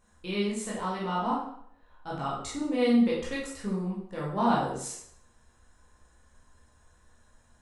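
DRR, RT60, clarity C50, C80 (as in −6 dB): −6.5 dB, 0.65 s, 1.5 dB, 6.0 dB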